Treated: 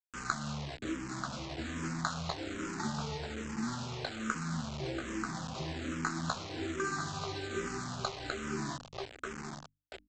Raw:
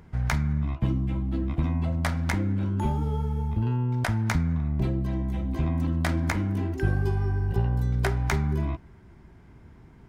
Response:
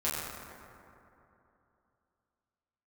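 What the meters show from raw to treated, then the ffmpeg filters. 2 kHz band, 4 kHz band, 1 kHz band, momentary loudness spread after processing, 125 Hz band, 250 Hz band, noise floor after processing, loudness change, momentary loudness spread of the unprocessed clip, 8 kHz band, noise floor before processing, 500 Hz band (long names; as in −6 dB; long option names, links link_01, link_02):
−4.0 dB, +2.0 dB, −3.0 dB, 5 LU, −17.0 dB, −9.0 dB, −66 dBFS, −11.0 dB, 3 LU, +1.0 dB, −51 dBFS, −5.5 dB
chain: -filter_complex "[0:a]highpass=210,equalizer=frequency=1500:width=4.3:gain=14,asplit=2[link_01][link_02];[link_02]adelay=13,volume=-4dB[link_03];[link_01][link_03]amix=inputs=2:normalize=0,acrossover=split=380[link_04][link_05];[link_05]acrusher=samples=16:mix=1:aa=0.000001[link_06];[link_04][link_06]amix=inputs=2:normalize=0,asplit=2[link_07][link_08];[link_08]adelay=936,lowpass=frequency=1400:poles=1,volume=-10dB,asplit=2[link_09][link_10];[link_10]adelay=936,lowpass=frequency=1400:poles=1,volume=0.5,asplit=2[link_11][link_12];[link_12]adelay=936,lowpass=frequency=1400:poles=1,volume=0.5,asplit=2[link_13][link_14];[link_14]adelay=936,lowpass=frequency=1400:poles=1,volume=0.5,asplit=2[link_15][link_16];[link_16]adelay=936,lowpass=frequency=1400:poles=1,volume=0.5[link_17];[link_07][link_09][link_11][link_13][link_15][link_17]amix=inputs=6:normalize=0,acompressor=threshold=-25dB:ratio=10,asuperstop=centerf=3000:order=12:qfactor=3,aresample=16000,acrusher=bits=5:mix=0:aa=0.000001,aresample=44100,bandreject=frequency=50:width_type=h:width=6,bandreject=frequency=100:width_type=h:width=6,bandreject=frequency=150:width_type=h:width=6,bandreject=frequency=200:width_type=h:width=6,bandreject=frequency=250:width_type=h:width=6,bandreject=frequency=300:width_type=h:width=6,asplit=2[link_18][link_19];[link_19]afreqshift=-1.2[link_20];[link_18][link_20]amix=inputs=2:normalize=1,volume=-3dB"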